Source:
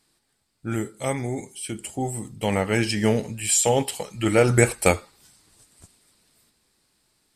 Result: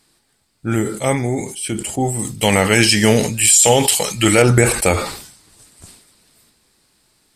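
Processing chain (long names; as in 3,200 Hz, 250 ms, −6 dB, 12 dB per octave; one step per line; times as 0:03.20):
0:02.19–0:04.42: high-shelf EQ 2,200 Hz +11 dB
brickwall limiter −10 dBFS, peak gain reduction 11 dB
level that may fall only so fast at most 77 dB per second
level +8 dB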